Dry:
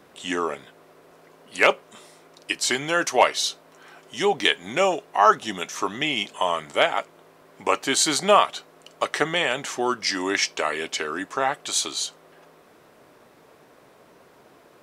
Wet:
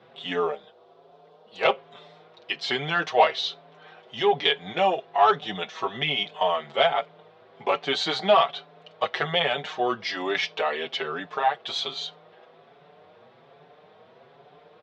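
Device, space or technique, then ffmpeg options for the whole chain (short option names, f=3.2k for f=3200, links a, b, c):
barber-pole flanger into a guitar amplifier: -filter_complex "[0:a]asplit=3[a][b][c];[a]afade=t=out:st=0.5:d=0.02[d];[b]equalizer=f=125:t=o:w=1:g=-10,equalizer=f=250:t=o:w=1:g=-3,equalizer=f=2k:t=o:w=1:g=-12,afade=t=in:st=0.5:d=0.02,afade=t=out:st=1.64:d=0.02[e];[c]afade=t=in:st=1.64:d=0.02[f];[d][e][f]amix=inputs=3:normalize=0,asplit=2[g][h];[h]adelay=5.7,afreqshift=1.2[i];[g][i]amix=inputs=2:normalize=1,asoftclip=type=tanh:threshold=-13dB,highpass=93,equalizer=f=110:t=q:w=4:g=6,equalizer=f=160:t=q:w=4:g=6,equalizer=f=300:t=q:w=4:g=-9,equalizer=f=450:t=q:w=4:g=6,equalizer=f=730:t=q:w=4:g=8,equalizer=f=3.5k:t=q:w=4:g=7,lowpass=f=4.1k:w=0.5412,lowpass=f=4.1k:w=1.3066"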